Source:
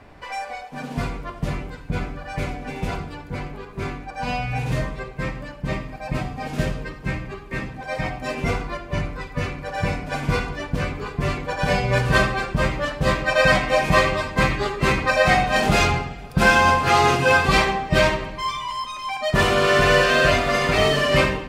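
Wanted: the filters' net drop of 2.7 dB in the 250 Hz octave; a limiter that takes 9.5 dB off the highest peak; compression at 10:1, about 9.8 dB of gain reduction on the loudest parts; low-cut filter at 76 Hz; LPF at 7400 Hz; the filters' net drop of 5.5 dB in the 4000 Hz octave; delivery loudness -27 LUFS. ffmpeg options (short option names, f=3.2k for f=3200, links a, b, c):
-af "highpass=76,lowpass=7.4k,equalizer=f=250:t=o:g=-4,equalizer=f=4k:t=o:g=-7.5,acompressor=threshold=-23dB:ratio=10,volume=5dB,alimiter=limit=-17.5dB:level=0:latency=1"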